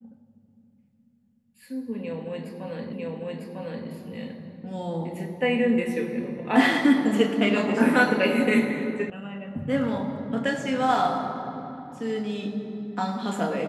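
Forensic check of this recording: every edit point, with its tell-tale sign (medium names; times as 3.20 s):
2.93 s: repeat of the last 0.95 s
9.10 s: sound stops dead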